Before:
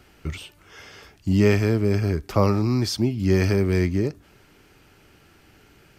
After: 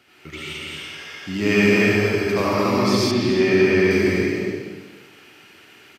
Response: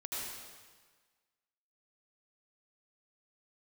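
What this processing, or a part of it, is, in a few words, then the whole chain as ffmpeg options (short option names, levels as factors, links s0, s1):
stadium PA: -filter_complex "[0:a]highpass=170,equalizer=f=2700:t=o:w=1.5:g=8,aecho=1:1:221.6|291.5:0.708|0.562[s0];[1:a]atrim=start_sample=2205[s1];[s0][s1]afir=irnorm=-1:irlink=0,asettb=1/sr,asplit=3[s2][s3][s4];[s2]atrim=end=3.114[s5];[s3]atrim=start=3.11:end=3.91,asetpts=PTS-STARTPTS,afade=t=in:d=0.004:c=qsin,afade=t=out:st=0.796:d=0.004:c=qsin,acrossover=split=4200[s6][s7];[s7]acompressor=threshold=0.00562:ratio=4:attack=1:release=60[s8];[s6][s8]amix=inputs=2:normalize=0[s9];[s4]atrim=start=3.906[s10];[s5][s9]acrossfade=d=0.004:c1=hsin:c2=qsin[s11];[s11][s10]acrossfade=d=0.004:c1=qsin:c2=hsin"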